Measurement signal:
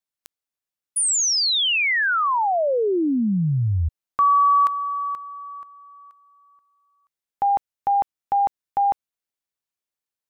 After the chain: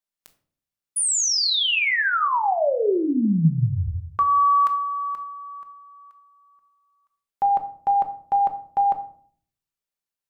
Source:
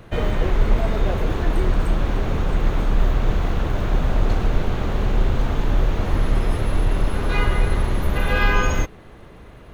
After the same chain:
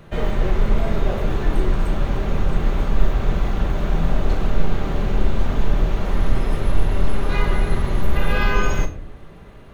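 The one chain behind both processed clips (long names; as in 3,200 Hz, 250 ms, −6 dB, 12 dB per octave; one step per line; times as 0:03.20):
rectangular room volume 590 cubic metres, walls furnished, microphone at 1.2 metres
level −2 dB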